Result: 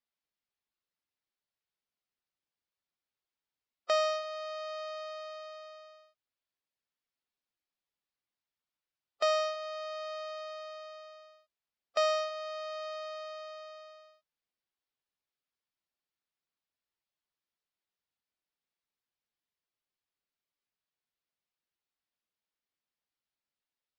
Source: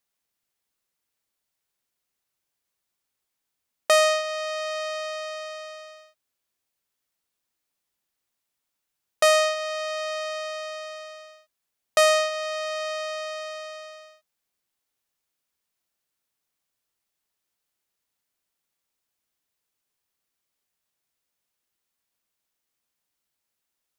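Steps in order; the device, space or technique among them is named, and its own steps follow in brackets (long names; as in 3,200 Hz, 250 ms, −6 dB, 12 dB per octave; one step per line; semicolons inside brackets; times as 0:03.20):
clip after many re-uploads (low-pass filter 5,400 Hz 24 dB per octave; spectral magnitudes quantised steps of 15 dB)
level −9 dB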